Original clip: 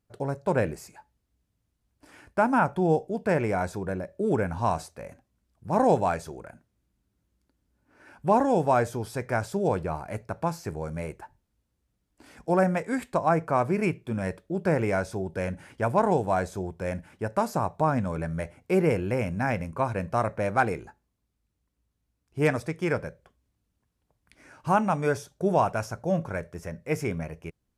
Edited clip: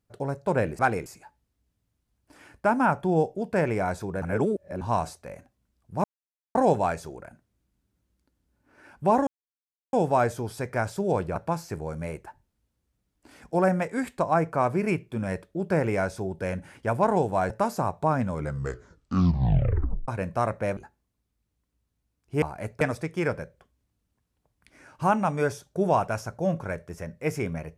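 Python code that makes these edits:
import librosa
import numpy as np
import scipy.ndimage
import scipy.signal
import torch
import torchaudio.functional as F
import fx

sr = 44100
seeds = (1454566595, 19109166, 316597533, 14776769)

y = fx.edit(x, sr, fx.reverse_span(start_s=3.95, length_s=0.59),
    fx.insert_silence(at_s=5.77, length_s=0.51),
    fx.insert_silence(at_s=8.49, length_s=0.66),
    fx.move(start_s=9.92, length_s=0.39, to_s=22.46),
    fx.cut(start_s=16.45, length_s=0.82),
    fx.tape_stop(start_s=18.07, length_s=1.78),
    fx.move(start_s=20.54, length_s=0.27, to_s=0.79), tone=tone)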